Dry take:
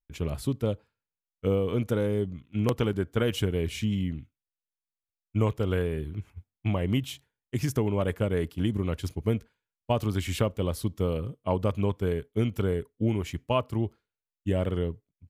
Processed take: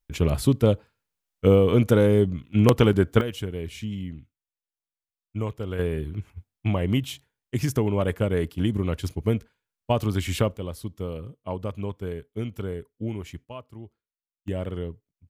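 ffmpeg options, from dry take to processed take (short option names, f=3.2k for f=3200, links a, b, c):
-af "asetnsamples=n=441:p=0,asendcmd='3.21 volume volume -4dB;5.79 volume volume 3dB;10.57 volume volume -4.5dB;13.45 volume volume -13.5dB;14.48 volume volume -3dB',volume=8.5dB"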